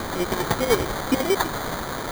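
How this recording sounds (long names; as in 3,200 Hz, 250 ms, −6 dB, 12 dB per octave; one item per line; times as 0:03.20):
chopped level 10 Hz, depth 60%, duty 45%
a quantiser's noise floor 6 bits, dither triangular
phaser sweep stages 4, 1.7 Hz, lowest notch 650–2,000 Hz
aliases and images of a low sample rate 2,700 Hz, jitter 0%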